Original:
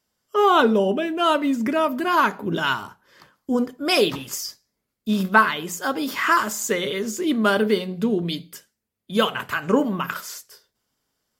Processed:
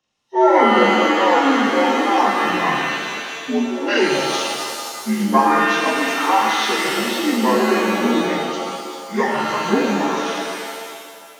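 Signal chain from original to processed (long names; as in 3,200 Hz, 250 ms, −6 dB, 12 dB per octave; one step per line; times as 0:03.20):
partials spread apart or drawn together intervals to 80%
reverb with rising layers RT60 1.9 s, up +7 semitones, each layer −2 dB, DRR 0.5 dB
level +1 dB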